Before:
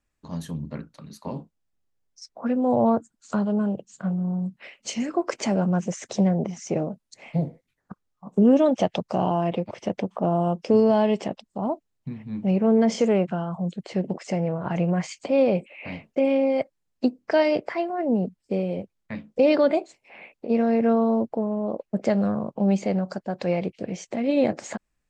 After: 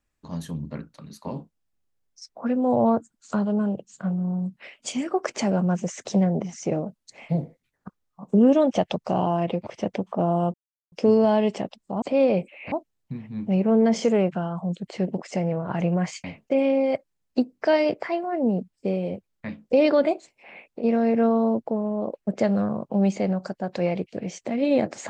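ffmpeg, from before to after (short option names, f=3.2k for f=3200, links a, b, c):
-filter_complex "[0:a]asplit=7[a][b][c][d][e][f][g];[a]atrim=end=4.764[h];[b]atrim=start=4.76:end=5.31,asetpts=PTS-STARTPTS,asetrate=47628,aresample=44100,atrim=end_sample=22458,asetpts=PTS-STARTPTS[i];[c]atrim=start=5.306:end=10.58,asetpts=PTS-STARTPTS,afade=t=out:st=5.27:d=0.004:c=hsin,apad=pad_dur=0.38[j];[d]atrim=start=10.58:end=11.682,asetpts=PTS-STARTPTS,afade=t=in:d=0.004:c=hsin[k];[e]atrim=start=15.198:end=15.902[l];[f]atrim=start=11.678:end=15.202[m];[g]atrim=start=15.898[n];[h][i]acrossfade=d=0.004:c1=hsin:c2=hsin[o];[j][k]concat=n=2:v=0:a=1[p];[o][p]acrossfade=d=0.004:c1=hsin:c2=hsin[q];[q][l]acrossfade=d=0.004:c1=hsin:c2=hsin[r];[r][m]acrossfade=d=0.004:c1=hsin:c2=hsin[s];[s][n]acrossfade=d=0.004:c1=hsin:c2=hsin"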